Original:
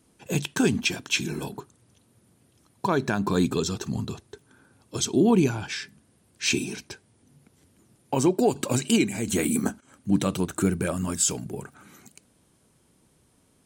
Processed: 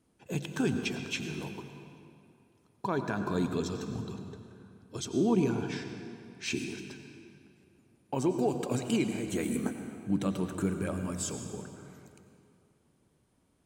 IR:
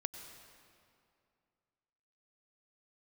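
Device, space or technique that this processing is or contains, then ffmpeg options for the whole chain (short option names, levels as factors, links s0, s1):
swimming-pool hall: -filter_complex "[1:a]atrim=start_sample=2205[s0];[0:a][s0]afir=irnorm=-1:irlink=0,highshelf=f=3400:g=-7,volume=0.531"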